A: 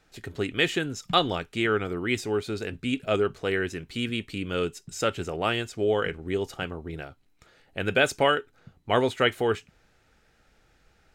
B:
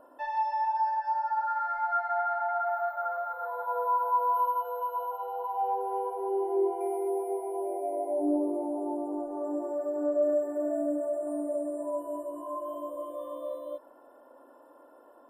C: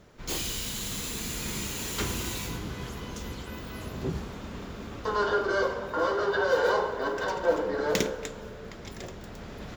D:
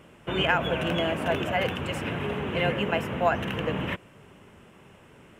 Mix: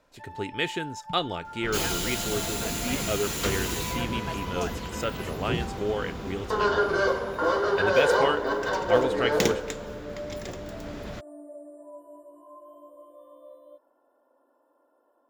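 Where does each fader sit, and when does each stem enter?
−4.5, −12.0, +2.5, −12.0 decibels; 0.00, 0.00, 1.45, 1.35 seconds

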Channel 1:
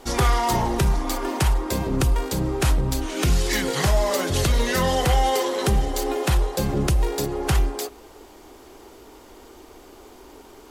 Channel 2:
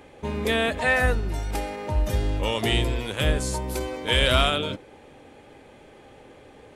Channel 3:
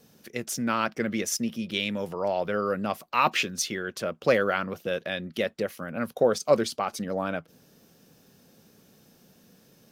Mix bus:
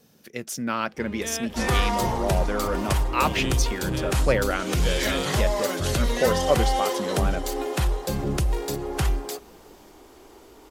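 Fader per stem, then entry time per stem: −3.5, −10.5, −0.5 decibels; 1.50, 0.75, 0.00 seconds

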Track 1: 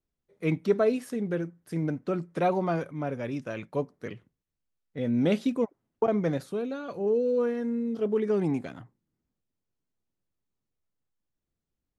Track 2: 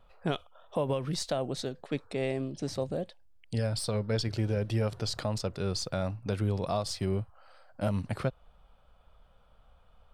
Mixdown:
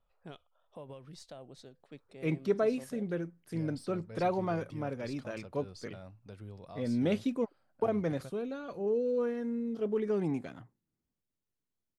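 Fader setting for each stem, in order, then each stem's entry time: −5.0, −17.5 decibels; 1.80, 0.00 seconds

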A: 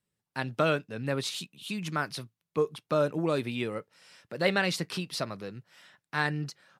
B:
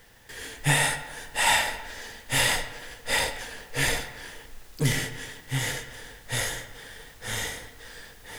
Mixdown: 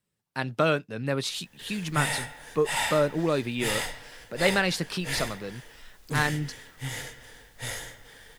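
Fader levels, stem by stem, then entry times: +2.5, −6.5 decibels; 0.00, 1.30 seconds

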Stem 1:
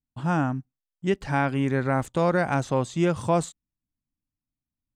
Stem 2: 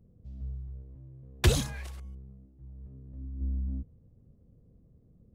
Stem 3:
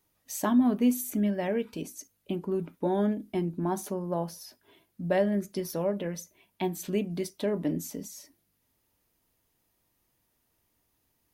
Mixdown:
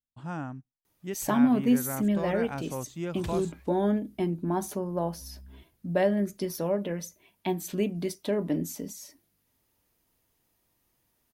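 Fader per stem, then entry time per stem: −11.5, −16.0, +1.0 decibels; 0.00, 1.80, 0.85 seconds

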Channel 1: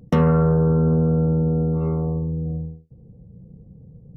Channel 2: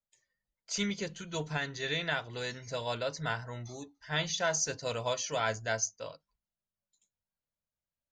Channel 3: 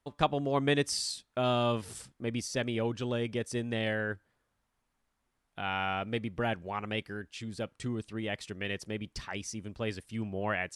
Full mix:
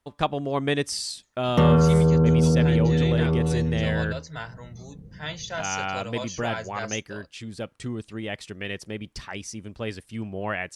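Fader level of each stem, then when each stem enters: −0.5, −2.0, +3.0 decibels; 1.45, 1.10, 0.00 seconds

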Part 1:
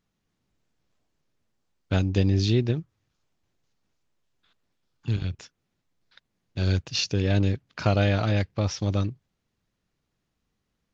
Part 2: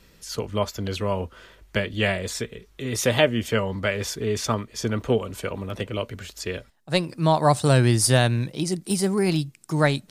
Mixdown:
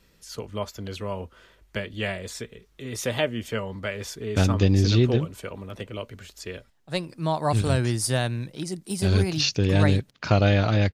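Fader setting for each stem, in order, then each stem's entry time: +2.5, −6.0 decibels; 2.45, 0.00 seconds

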